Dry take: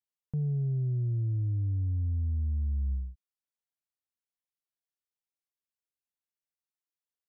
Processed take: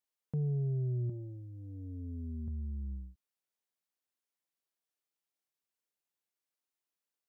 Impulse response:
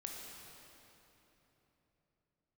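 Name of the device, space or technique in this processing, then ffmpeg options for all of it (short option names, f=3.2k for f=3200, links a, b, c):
filter by subtraction: -filter_complex "[0:a]asettb=1/sr,asplit=3[a][b][c];[a]atrim=end=1.094[d];[b]atrim=start=1.09:end=2.48,asetpts=PTS-STARTPTS,afade=t=in:d=0.004:c=qsin,afade=t=out:st=1.386:d=0.004:c=qsin,aecho=1:1:4.8:0.75,atrim=end_sample=61299[e];[c]atrim=start=2.476[f];[d][e]acrossfade=d=0.004:c1=hsin:c2=qsin[g];[g][f]acrossfade=d=0.004:c1=qsin:c2=hsin,asplit=2[h][i];[i]lowpass=340,volume=-1[j];[h][j]amix=inputs=2:normalize=0,volume=1.5dB"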